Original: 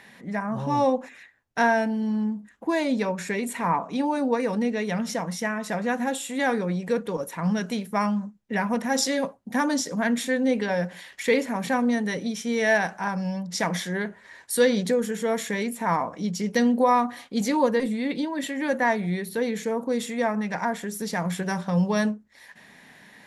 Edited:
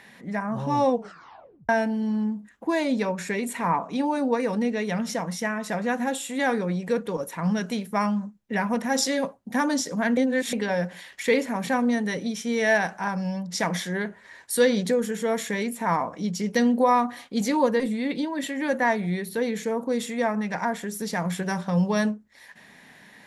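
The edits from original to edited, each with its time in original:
0:00.90: tape stop 0.79 s
0:10.17–0:10.53: reverse

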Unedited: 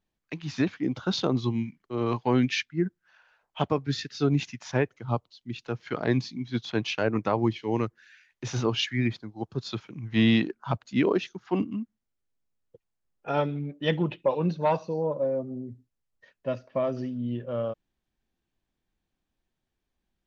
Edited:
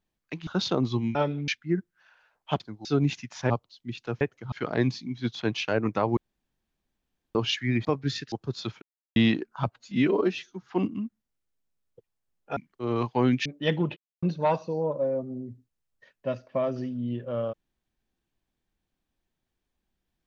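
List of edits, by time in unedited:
0:00.47–0:00.99: remove
0:01.67–0:02.56: swap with 0:13.33–0:13.66
0:03.68–0:04.15: swap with 0:09.15–0:09.40
0:04.80–0:05.11: move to 0:05.82
0:07.47–0:08.65: fill with room tone
0:09.90–0:10.24: silence
0:10.79–0:11.42: time-stretch 1.5×
0:14.17–0:14.43: silence

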